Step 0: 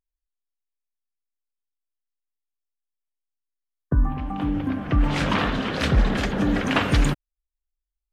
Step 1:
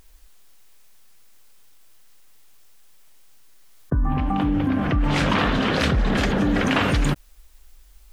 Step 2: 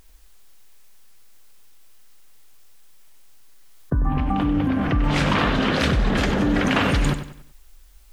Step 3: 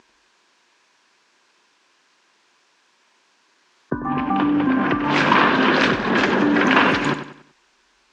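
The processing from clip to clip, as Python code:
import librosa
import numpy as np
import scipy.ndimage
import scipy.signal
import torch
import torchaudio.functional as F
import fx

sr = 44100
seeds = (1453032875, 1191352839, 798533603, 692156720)

y1 = fx.env_flatten(x, sr, amount_pct=70)
y1 = y1 * 10.0 ** (-4.0 / 20.0)
y2 = fx.echo_feedback(y1, sr, ms=95, feedback_pct=37, wet_db=-10.5)
y3 = fx.cabinet(y2, sr, low_hz=220.0, low_slope=12, high_hz=6200.0, hz=(240.0, 360.0, 1000.0, 1600.0, 2500.0), db=(4, 7, 9, 7, 4))
y3 = y3 * 10.0 ** (1.5 / 20.0)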